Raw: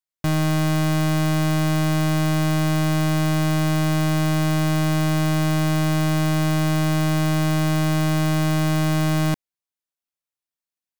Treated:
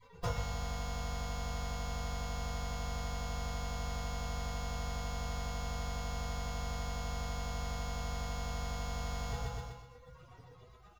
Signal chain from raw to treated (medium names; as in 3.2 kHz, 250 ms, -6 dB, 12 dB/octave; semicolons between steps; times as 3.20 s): one-bit comparator; spectral gate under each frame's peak -30 dB weak; feedback delay 123 ms, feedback 40%, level -3.5 dB; compression 6:1, threshold -42 dBFS, peak gain reduction 11 dB; Savitzky-Golay filter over 65 samples; bass shelf 430 Hz -7.5 dB; half-wave rectifier; reverberation RT60 0.30 s, pre-delay 3 ms, DRR -9 dB; trim +17 dB